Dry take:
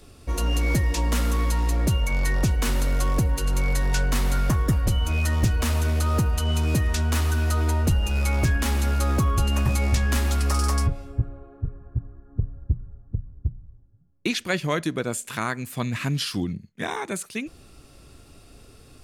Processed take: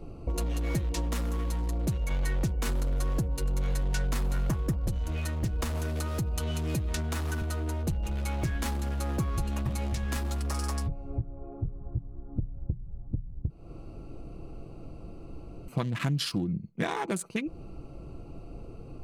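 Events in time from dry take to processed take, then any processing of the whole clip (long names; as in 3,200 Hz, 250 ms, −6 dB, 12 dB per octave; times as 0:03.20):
0:05.62–0:07.42: multiband upward and downward compressor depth 100%
0:13.50–0:15.68: fill with room tone
whole clip: adaptive Wiener filter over 25 samples; downward compressor, threshold −34 dBFS; comb filter 6 ms, depth 35%; level +7 dB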